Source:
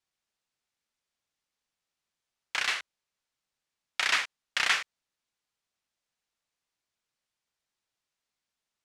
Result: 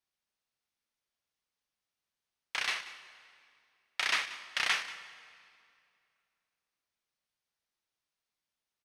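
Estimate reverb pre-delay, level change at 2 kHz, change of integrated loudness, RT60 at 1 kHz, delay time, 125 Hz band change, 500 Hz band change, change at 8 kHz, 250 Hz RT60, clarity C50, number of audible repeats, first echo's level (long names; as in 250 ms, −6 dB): 9 ms, −4.0 dB, −4.0 dB, 2.3 s, 185 ms, can't be measured, −3.0 dB, −4.5 dB, 2.7 s, 12.0 dB, 1, −17.5 dB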